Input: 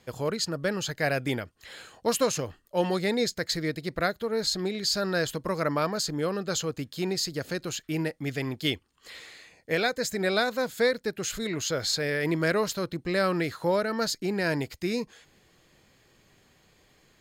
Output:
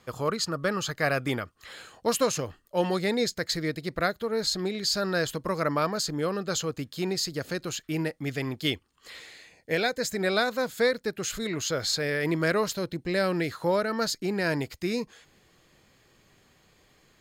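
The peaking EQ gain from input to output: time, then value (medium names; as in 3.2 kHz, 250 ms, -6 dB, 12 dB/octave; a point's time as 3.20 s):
peaking EQ 1.2 kHz 0.32 oct
+11.5 dB
from 1.72 s +2.5 dB
from 9.22 s -5 dB
from 10.00 s +2.5 dB
from 12.74 s -7 dB
from 13.50 s +2.5 dB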